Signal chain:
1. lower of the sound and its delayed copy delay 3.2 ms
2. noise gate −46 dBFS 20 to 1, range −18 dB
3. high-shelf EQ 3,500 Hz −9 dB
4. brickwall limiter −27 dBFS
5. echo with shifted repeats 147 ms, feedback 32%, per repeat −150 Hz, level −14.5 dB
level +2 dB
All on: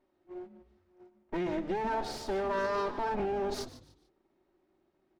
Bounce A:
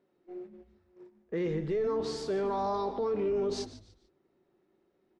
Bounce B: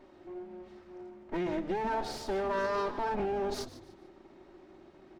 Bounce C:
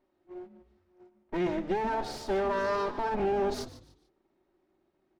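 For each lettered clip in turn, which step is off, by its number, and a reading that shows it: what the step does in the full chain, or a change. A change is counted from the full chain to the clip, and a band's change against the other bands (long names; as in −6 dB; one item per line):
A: 1, 2 kHz band −9.5 dB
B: 2, change in momentary loudness spread +2 LU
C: 4, average gain reduction 1.5 dB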